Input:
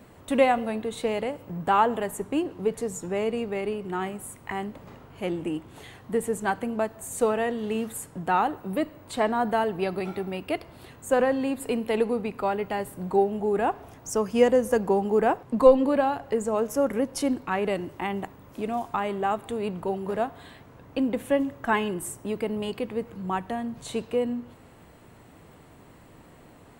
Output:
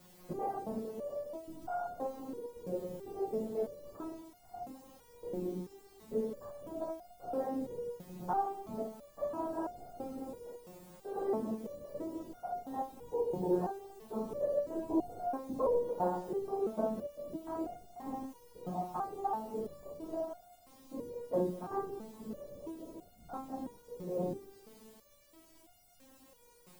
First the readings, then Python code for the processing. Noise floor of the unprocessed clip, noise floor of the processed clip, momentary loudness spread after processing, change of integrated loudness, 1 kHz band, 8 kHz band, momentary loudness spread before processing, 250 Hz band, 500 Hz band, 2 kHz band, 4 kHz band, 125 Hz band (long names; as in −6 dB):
−52 dBFS, −62 dBFS, 14 LU, −12.0 dB, −12.0 dB, below −20 dB, 11 LU, −12.0 dB, −12.0 dB, −25.0 dB, below −20 dB, −10.5 dB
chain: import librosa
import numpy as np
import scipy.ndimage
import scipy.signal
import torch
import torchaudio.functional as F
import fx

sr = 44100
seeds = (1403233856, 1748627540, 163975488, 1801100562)

p1 = fx.spec_steps(x, sr, hold_ms=100)
p2 = scipy.signal.sosfilt(scipy.signal.butter(4, 1100.0, 'lowpass', fs=sr, output='sos'), p1)
p3 = fx.whisperise(p2, sr, seeds[0])
p4 = fx.quant_dither(p3, sr, seeds[1], bits=8, dither='triangular')
p5 = p3 + (p4 * 10.0 ** (-3.5 / 20.0))
p6 = fx.echo_feedback(p5, sr, ms=209, feedback_pct=53, wet_db=-19.0)
p7 = fx.resonator_held(p6, sr, hz=3.0, low_hz=180.0, high_hz=710.0)
y = p7 * 10.0 ** (1.0 / 20.0)